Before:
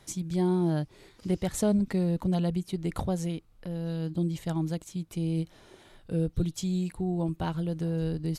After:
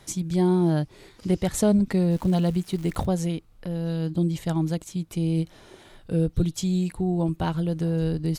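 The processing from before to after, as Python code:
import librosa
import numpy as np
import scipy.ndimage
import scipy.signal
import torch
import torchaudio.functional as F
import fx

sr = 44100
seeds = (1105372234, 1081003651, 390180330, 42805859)

y = fx.dmg_crackle(x, sr, seeds[0], per_s=520.0, level_db=-43.0, at=(2.1, 3.05), fade=0.02)
y = y * 10.0 ** (5.0 / 20.0)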